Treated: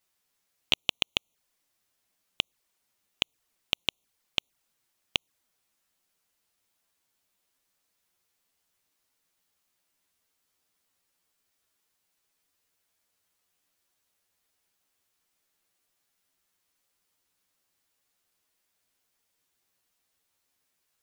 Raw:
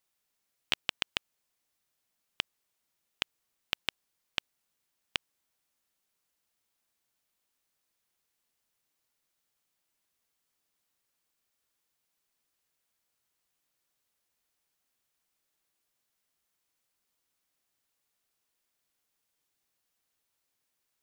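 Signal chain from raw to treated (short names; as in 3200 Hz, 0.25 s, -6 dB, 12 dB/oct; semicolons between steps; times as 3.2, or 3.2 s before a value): envelope flanger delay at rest 11.8 ms, full sweep at -44 dBFS; gain +7 dB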